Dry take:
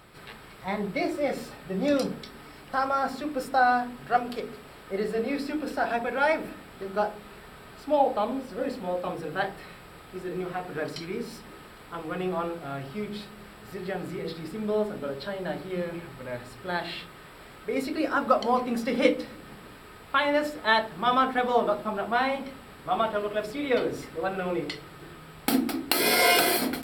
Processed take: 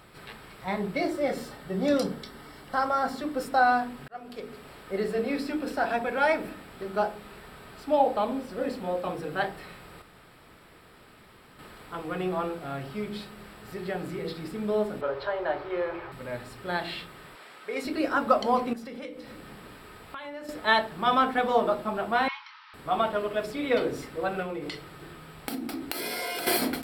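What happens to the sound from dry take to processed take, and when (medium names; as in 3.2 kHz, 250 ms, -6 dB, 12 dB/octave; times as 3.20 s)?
0.98–3.41 s: band-stop 2.5 kHz, Q 8.1
4.08–4.66 s: fade in
10.02–11.59 s: room tone
15.01–16.12 s: FFT filter 120 Hz 0 dB, 190 Hz -20 dB, 360 Hz +1 dB, 1 kHz +8 dB, 5.6 kHz -7 dB, 9.9 kHz -23 dB, 15 kHz -10 dB
17.35–17.85 s: frequency weighting A
18.73–20.49 s: compression 4:1, threshold -39 dBFS
22.28–22.74 s: brick-wall FIR band-pass 840–6000 Hz
24.42–26.47 s: compression, threshold -30 dBFS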